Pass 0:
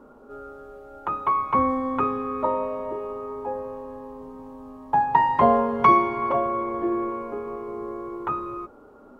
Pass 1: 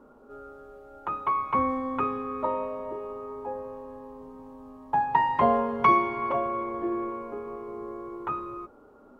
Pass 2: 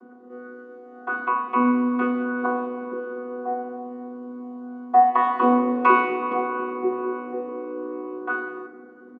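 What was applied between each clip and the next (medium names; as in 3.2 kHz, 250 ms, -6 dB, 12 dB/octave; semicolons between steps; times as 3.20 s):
dynamic bell 2.6 kHz, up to +4 dB, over -38 dBFS, Q 1.2; trim -4.5 dB
vocoder on a held chord bare fifth, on B3; speakerphone echo 90 ms, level -28 dB; FDN reverb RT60 2 s, low-frequency decay 1.4×, high-frequency decay 0.55×, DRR 5 dB; trim +5 dB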